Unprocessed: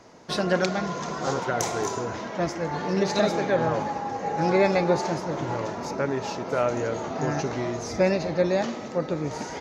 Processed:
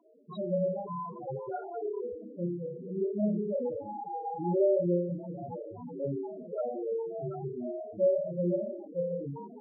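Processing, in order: 2.07–3.96 minimum comb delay 0.38 ms; flutter echo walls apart 4.9 m, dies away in 0.72 s; loudest bins only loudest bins 4; gain -7.5 dB

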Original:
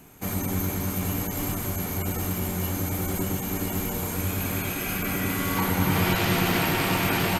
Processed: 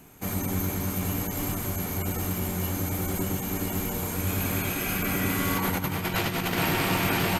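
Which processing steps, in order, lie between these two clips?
4.27–6.58 negative-ratio compressor -25 dBFS, ratio -0.5; gain -1 dB

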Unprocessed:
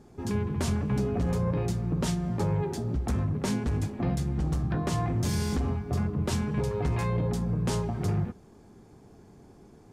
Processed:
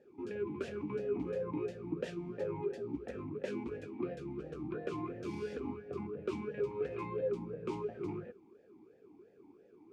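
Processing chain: vowel sweep e-u 2.9 Hz; gain +4 dB

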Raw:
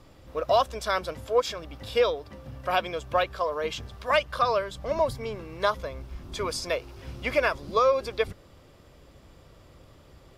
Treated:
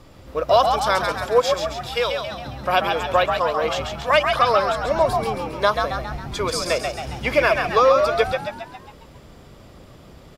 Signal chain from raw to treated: 1.73–2.27 bell 250 Hz -15 dB 1.9 oct; on a send: frequency-shifting echo 0.136 s, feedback 53%, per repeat +77 Hz, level -5 dB; on the sum: gain +6 dB

